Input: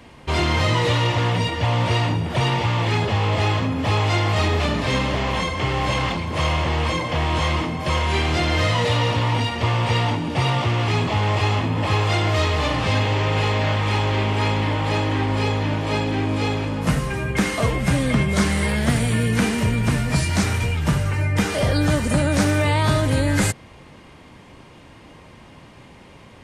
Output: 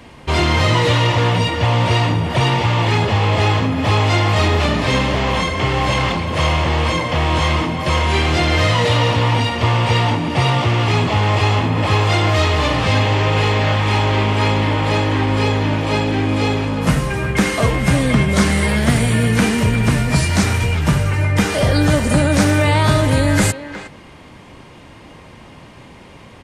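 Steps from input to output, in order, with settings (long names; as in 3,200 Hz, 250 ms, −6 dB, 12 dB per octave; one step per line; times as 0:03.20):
far-end echo of a speakerphone 360 ms, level −11 dB
level +4.5 dB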